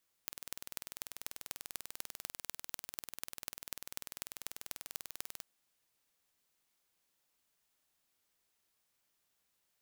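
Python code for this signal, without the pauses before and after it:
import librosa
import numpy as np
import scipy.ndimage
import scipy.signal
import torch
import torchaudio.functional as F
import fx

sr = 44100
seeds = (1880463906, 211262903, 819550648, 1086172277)

y = fx.impulse_train(sr, length_s=5.16, per_s=20.3, accent_every=5, level_db=-10.5)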